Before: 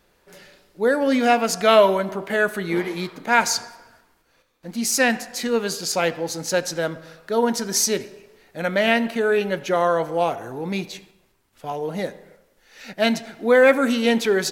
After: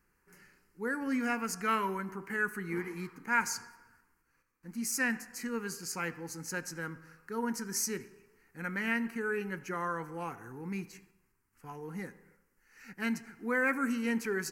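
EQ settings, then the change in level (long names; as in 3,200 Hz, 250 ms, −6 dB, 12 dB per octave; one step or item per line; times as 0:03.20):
phaser with its sweep stopped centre 1,500 Hz, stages 4
−9.0 dB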